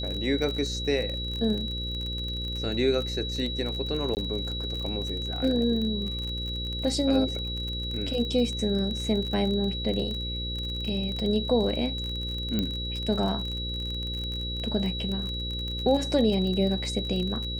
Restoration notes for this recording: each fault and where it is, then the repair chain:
mains buzz 60 Hz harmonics 9 −34 dBFS
surface crackle 37 per second −31 dBFS
whistle 3,900 Hz −33 dBFS
0:04.15–0:04.17: drop-out 19 ms
0:12.59: click −14 dBFS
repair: click removal
hum removal 60 Hz, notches 9
notch filter 3,900 Hz, Q 30
repair the gap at 0:04.15, 19 ms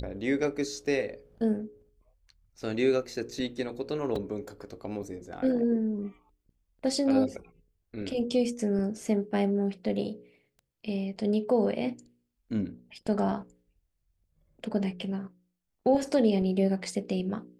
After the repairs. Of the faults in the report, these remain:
none of them is left

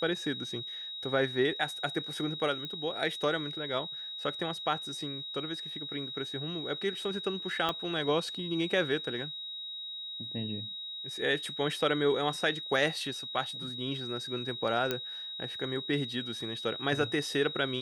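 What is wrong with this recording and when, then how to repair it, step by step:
whistle 3,800 Hz −38 dBFS
0:02.65: click −25 dBFS
0:07.69: click −17 dBFS
0:14.91: click −15 dBFS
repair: click removal
notch filter 3,800 Hz, Q 30

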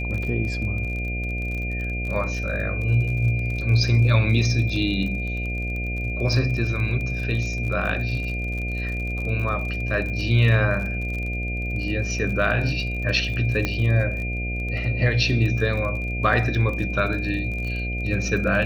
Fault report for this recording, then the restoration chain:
mains buzz 60 Hz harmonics 12 −28 dBFS
surface crackle 40 per second −30 dBFS
whistle 2,400 Hz −30 dBFS
0:13.65: click −10 dBFS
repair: click removal
notch filter 2,400 Hz, Q 30
hum removal 60 Hz, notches 12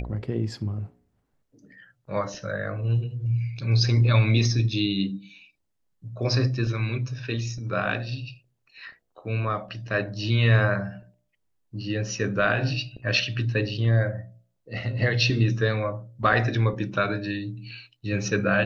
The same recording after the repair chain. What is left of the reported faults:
none of them is left

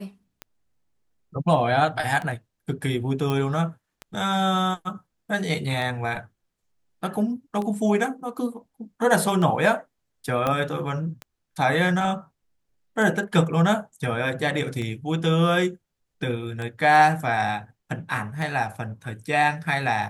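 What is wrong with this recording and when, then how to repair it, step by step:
scratch tick 33 1/3 rpm −19 dBFS
0:03.30: click −14 dBFS
0:10.47: click −11 dBFS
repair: click removal

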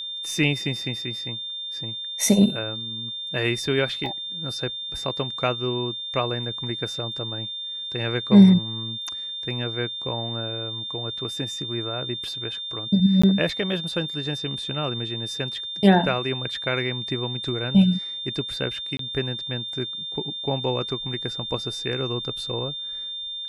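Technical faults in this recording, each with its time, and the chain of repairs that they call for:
whistle 3,600 Hz −30 dBFS
0:04.06: drop-out 2.1 ms
0:13.22–0:13.23: drop-out 15 ms
0:18.97–0:18.99: drop-out 23 ms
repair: notch filter 3,600 Hz, Q 30
repair the gap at 0:04.06, 2.1 ms
repair the gap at 0:13.22, 15 ms
repair the gap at 0:18.97, 23 ms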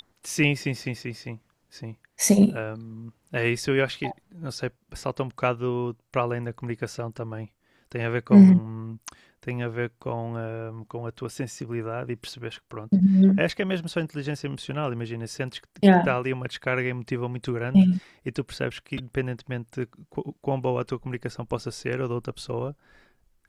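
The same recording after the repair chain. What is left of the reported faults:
none of them is left

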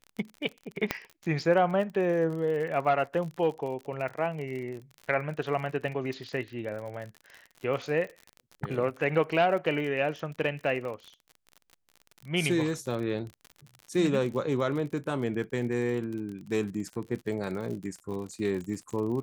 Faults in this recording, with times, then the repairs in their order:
surface crackle 49 per second −36 dBFS
0:00.91: click −11 dBFS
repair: click removal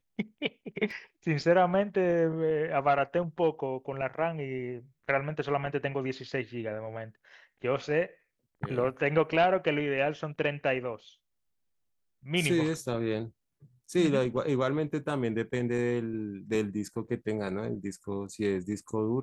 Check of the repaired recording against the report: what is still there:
0:00.91: click

